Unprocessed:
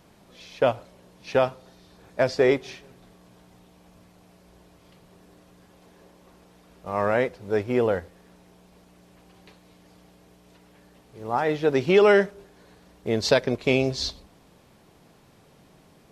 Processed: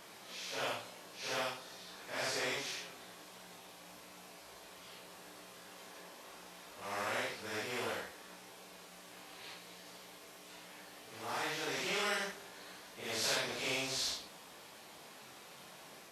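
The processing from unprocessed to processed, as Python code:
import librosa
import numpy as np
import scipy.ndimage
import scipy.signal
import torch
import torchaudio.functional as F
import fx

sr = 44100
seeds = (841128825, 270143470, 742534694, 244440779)

y = fx.phase_scramble(x, sr, seeds[0], window_ms=200)
y = fx.highpass(y, sr, hz=1200.0, slope=6)
y = fx.spectral_comp(y, sr, ratio=2.0)
y = F.gain(torch.from_numpy(y), -9.0).numpy()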